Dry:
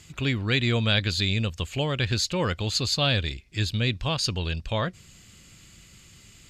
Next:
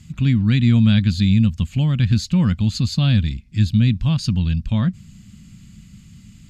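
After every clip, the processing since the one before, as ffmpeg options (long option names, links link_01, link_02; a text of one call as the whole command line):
ffmpeg -i in.wav -af "lowshelf=frequency=300:width_type=q:width=3:gain=12,volume=-3.5dB" out.wav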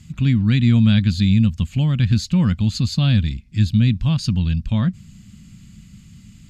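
ffmpeg -i in.wav -af anull out.wav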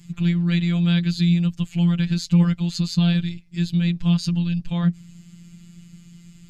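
ffmpeg -i in.wav -af "afftfilt=real='hypot(re,im)*cos(PI*b)':imag='0':win_size=1024:overlap=0.75,volume=1.5dB" out.wav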